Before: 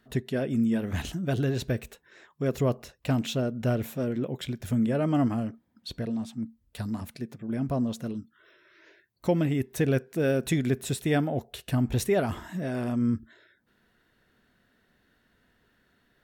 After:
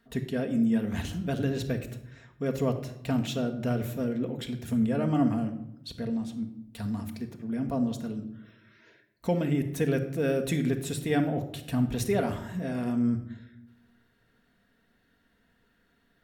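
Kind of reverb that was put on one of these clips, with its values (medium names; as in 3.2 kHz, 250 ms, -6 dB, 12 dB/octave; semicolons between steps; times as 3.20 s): simulated room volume 2300 m³, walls furnished, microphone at 1.7 m; trim -3 dB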